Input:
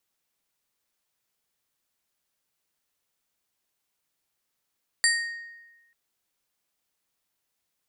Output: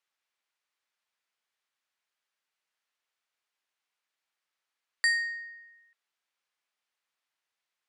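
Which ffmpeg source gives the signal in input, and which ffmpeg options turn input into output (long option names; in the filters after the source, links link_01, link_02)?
-f lavfi -i "aevalsrc='0.106*pow(10,-3*t/1.19)*sin(2*PI*1860*t)+0.0891*pow(10,-3*t/0.627)*sin(2*PI*4650*t)+0.075*pow(10,-3*t/0.451)*sin(2*PI*7440*t)+0.0631*pow(10,-3*t/0.386)*sin(2*PI*9300*t)':duration=0.89:sample_rate=44100"
-af "bandpass=frequency=1800:width_type=q:width=0.68:csg=0"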